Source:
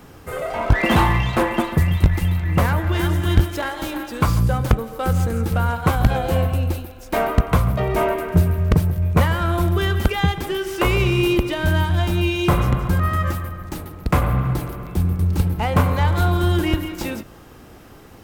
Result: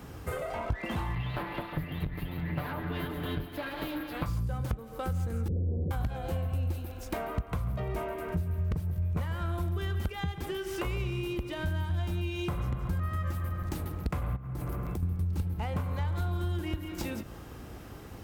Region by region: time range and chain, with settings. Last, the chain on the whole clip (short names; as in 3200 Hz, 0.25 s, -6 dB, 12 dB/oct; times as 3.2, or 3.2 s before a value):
1.15–4.26 minimum comb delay 6.8 ms + band shelf 7000 Hz -15 dB 1 oct
5.48–5.91 infinite clipping + elliptic low-pass 500 Hz, stop band 60 dB
14.36–15.03 bell 3600 Hz -5 dB 1.2 oct + compressor 16:1, threshold -28 dBFS
whole clip: compressor 10:1, threshold -29 dBFS; HPF 52 Hz; low shelf 91 Hz +11.5 dB; gain -3.5 dB